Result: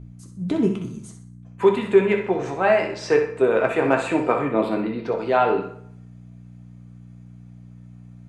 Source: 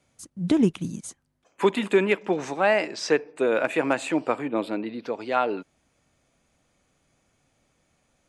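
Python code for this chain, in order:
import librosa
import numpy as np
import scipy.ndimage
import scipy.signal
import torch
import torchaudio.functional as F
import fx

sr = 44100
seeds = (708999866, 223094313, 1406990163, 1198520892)

y = fx.high_shelf(x, sr, hz=2900.0, db=-9.0)
y = fx.rider(y, sr, range_db=10, speed_s=2.0)
y = fx.add_hum(y, sr, base_hz=60, snr_db=14)
y = fx.room_flutter(y, sr, wall_m=10.7, rt60_s=0.39)
y = fx.rev_fdn(y, sr, rt60_s=0.67, lf_ratio=0.7, hf_ratio=0.7, size_ms=45.0, drr_db=2.5)
y = y * librosa.db_to_amplitude(2.0)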